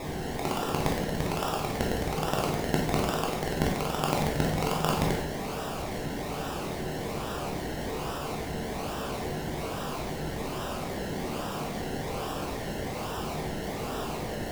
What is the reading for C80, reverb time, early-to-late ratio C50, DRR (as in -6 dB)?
7.0 dB, not exponential, 3.5 dB, -2.5 dB